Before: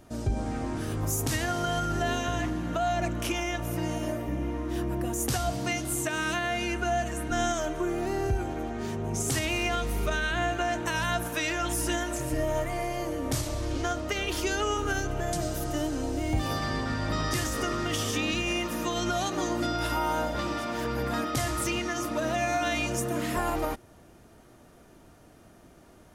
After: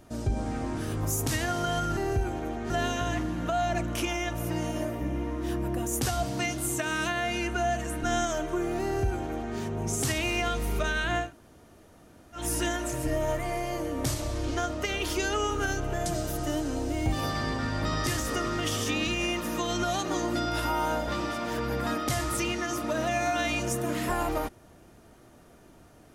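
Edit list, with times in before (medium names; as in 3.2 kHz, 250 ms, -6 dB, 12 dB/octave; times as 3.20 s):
8.11–8.84 s: copy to 1.97 s
10.52–11.67 s: room tone, crossfade 0.16 s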